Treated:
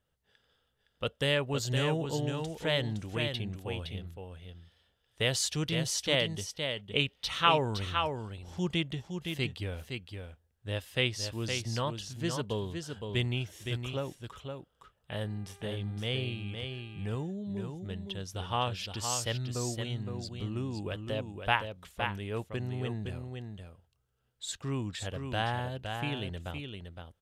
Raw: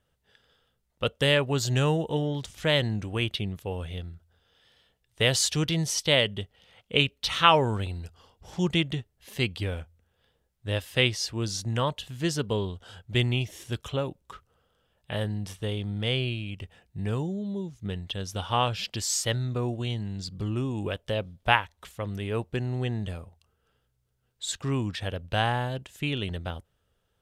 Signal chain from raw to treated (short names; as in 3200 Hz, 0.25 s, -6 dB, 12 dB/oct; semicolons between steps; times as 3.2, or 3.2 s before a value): echo 0.514 s -6 dB; 15.25–17.23 buzz 400 Hz, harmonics 6, -54 dBFS -5 dB/oct; gain -6 dB